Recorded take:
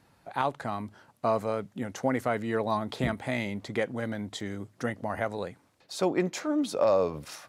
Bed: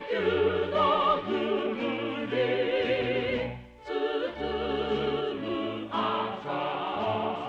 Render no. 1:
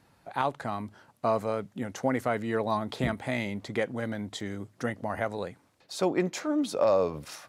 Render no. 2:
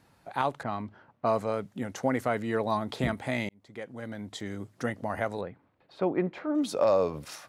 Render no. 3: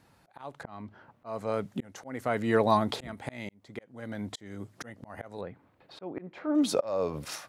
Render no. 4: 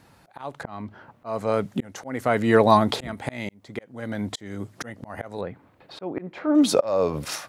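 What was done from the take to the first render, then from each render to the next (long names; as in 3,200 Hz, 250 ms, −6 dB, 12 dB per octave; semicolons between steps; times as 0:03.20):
no processing that can be heard
0:00.63–0:01.53: low-pass that shuts in the quiet parts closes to 1,700 Hz, open at −22 dBFS; 0:03.49–0:04.62: fade in; 0:05.41–0:06.55: high-frequency loss of the air 460 metres
automatic gain control gain up to 5 dB; volume swells 526 ms
level +7.5 dB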